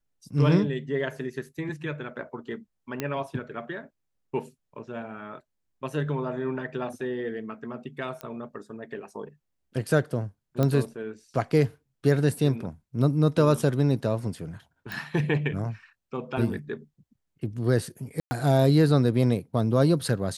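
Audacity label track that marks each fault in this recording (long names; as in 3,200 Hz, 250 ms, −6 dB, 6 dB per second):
3.000000	3.000000	click −14 dBFS
8.210000	8.210000	click −20 dBFS
10.630000	10.630000	click −13 dBFS
14.920000	14.920000	click
18.200000	18.310000	drop-out 110 ms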